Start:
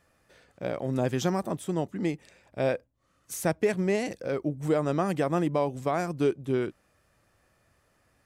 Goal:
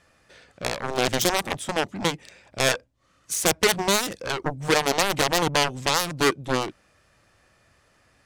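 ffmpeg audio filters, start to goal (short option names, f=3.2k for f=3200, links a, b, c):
-af "adynamicsmooth=sensitivity=4.5:basefreq=4.3k,aeval=exprs='0.188*(cos(1*acos(clip(val(0)/0.188,-1,1)))-cos(1*PI/2))+0.0668*(cos(7*acos(clip(val(0)/0.188,-1,1)))-cos(7*PI/2))':c=same,crystalizer=i=5:c=0,volume=1dB"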